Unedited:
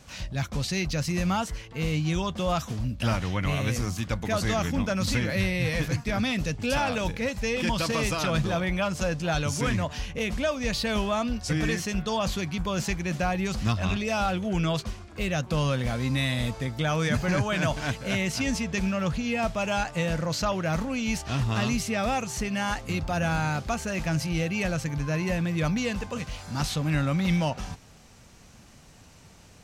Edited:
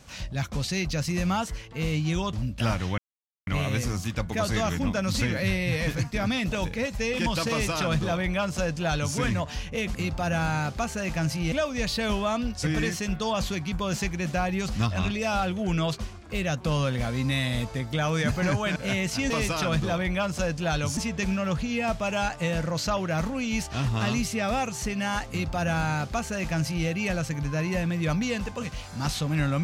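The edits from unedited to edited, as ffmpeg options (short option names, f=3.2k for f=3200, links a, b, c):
-filter_complex "[0:a]asplit=9[a][b][c][d][e][f][g][h][i];[a]atrim=end=2.332[j];[b]atrim=start=2.748:end=3.4,asetpts=PTS-STARTPTS,afade=t=out:st=0.648:d=0.004:c=hsin,apad=pad_dur=0.49[k];[c]atrim=start=3.4:end=6.452,asetpts=PTS-STARTPTS,afade=t=in:d=0.004:c=hsin[l];[d]atrim=start=6.948:end=10.382[m];[e]atrim=start=22.848:end=24.422[n];[f]atrim=start=10.378:end=17.622[o];[g]atrim=start=17.978:end=18.522[p];[h]atrim=start=7.918:end=9.592[q];[i]atrim=start=18.518[r];[k][l]concat=n=2:v=0:a=1[s];[j][s]acrossfade=d=0.004:c1=hsin:c2=hsin[t];[t][m]acrossfade=d=0.004:c1=hsin:c2=hsin[u];[u][n]acrossfade=d=0.004:c1=hsin:c2=hsin[v];[v][o]acrossfade=d=0.004:c1=hsin:c2=hsin[w];[w][p]acrossfade=d=0.004:c1=hsin:c2=hsin[x];[x][q]acrossfade=d=0.004:c1=hsin:c2=hsin[y];[y][r]acrossfade=d=0.004:c1=hsin:c2=hsin"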